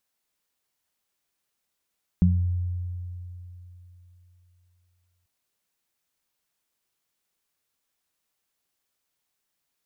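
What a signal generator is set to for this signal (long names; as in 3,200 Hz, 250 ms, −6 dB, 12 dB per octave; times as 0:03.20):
harmonic partials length 3.04 s, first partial 89 Hz, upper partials 4.5 dB, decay 3.38 s, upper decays 0.39 s, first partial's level −17.5 dB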